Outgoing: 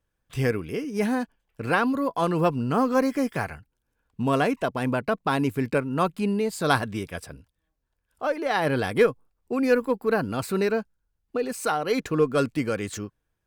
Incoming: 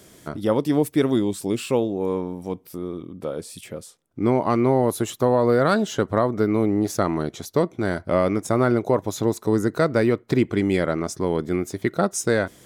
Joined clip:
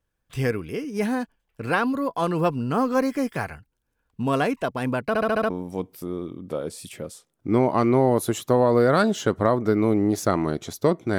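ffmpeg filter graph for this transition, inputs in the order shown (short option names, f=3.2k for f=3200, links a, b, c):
-filter_complex "[0:a]apad=whole_dur=11.18,atrim=end=11.18,asplit=6[a][b][c][d][e][f];[a]atrim=end=5.152[g];[b]atrim=start=5.078:end=5.152[h];[c]atrim=start=5.078:end=5.152[i];[d]atrim=start=5.078:end=5.152[j];[e]atrim=start=5.078:end=5.152[k];[f]atrim=start=5.078:end=5.152[l];[1:a]atrim=start=2.218:end=7.9[m];[g][h]acrossfade=d=0.004:c1=hsin:c2=hsin[n];[n][i]acrossfade=d=0.004:c1=hsin:c2=hsin[o];[o][j]acrossfade=d=0.004:c1=hsin:c2=hsin[p];[p][k]acrossfade=d=0.004:c1=hsin:c2=hsin[q];[q][l]acrossfade=d=0.004:c1=hsin:c2=hsin[r];[r][m]acrossfade=d=0.004:c1=hsin:c2=hsin"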